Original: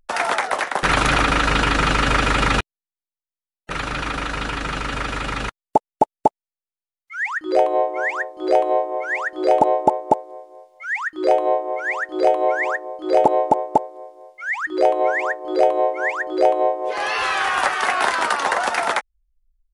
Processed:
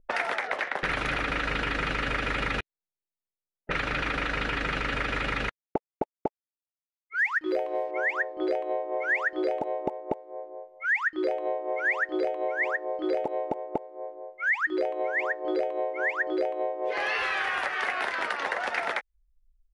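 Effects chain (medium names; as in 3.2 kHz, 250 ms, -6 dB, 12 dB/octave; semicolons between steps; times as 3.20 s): 5.44–7.91 s: companding laws mixed up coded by A; compression 16:1, threshold -27 dBFS, peak gain reduction 18.5 dB; level-controlled noise filter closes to 530 Hz, open at -26 dBFS; graphic EQ 500/1000/2000/8000 Hz +4/-4/+7/-8 dB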